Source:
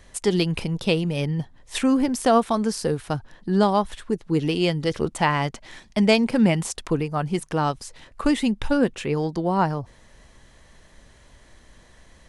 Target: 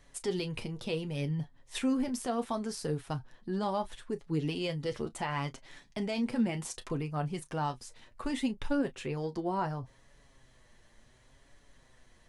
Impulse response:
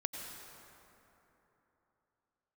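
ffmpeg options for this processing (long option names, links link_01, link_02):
-filter_complex "[0:a]asplit=2[link_01][link_02];[1:a]atrim=start_sample=2205,atrim=end_sample=3528,adelay=32[link_03];[link_02][link_03]afir=irnorm=-1:irlink=0,volume=-14dB[link_04];[link_01][link_04]amix=inputs=2:normalize=0,alimiter=limit=-13.5dB:level=0:latency=1:release=20,flanger=delay=6.9:depth=1.8:regen=34:speed=0.69:shape=triangular,volume=-6dB"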